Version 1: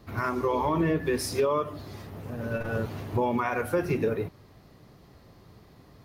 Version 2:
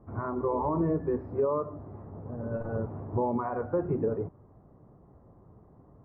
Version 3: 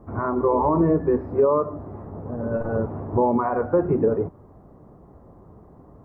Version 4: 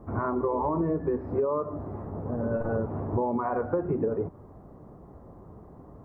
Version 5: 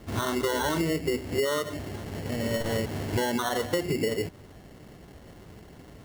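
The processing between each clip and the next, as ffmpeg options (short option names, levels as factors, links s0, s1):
-af "lowpass=f=1100:w=0.5412,lowpass=f=1100:w=1.3066,volume=0.794"
-af "equalizer=f=120:w=2:g=-5,volume=2.82"
-af "acompressor=threshold=0.0562:ratio=4"
-af "acrusher=samples=18:mix=1:aa=0.000001"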